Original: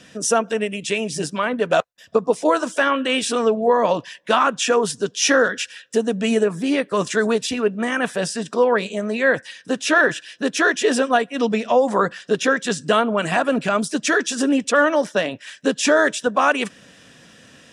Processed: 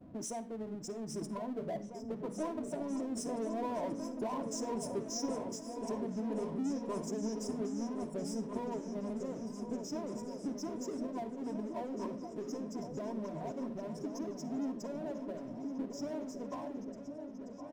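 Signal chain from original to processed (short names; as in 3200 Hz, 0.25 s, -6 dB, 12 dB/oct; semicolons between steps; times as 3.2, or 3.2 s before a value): Doppler pass-by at 4.31, 7 m/s, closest 6.9 m; low-pass opened by the level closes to 2200 Hz, open at -30.5 dBFS; expander -57 dBFS; notches 60/120/180/240/300/360/420/480/540/600 Hz; compressor 3:1, threshold -52 dBFS, peak gain reduction 27.5 dB; brick-wall FIR band-stop 1100–4900 Hz; low shelf 290 Hz +11.5 dB; comb 3.1 ms, depth 44%; spectral gate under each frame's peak -20 dB strong; power-law curve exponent 0.7; repeats that get brighter 0.532 s, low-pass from 200 Hz, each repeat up 2 oct, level -3 dB; on a send at -14 dB: reverb RT60 0.35 s, pre-delay 46 ms; on the sum: gain +1.5 dB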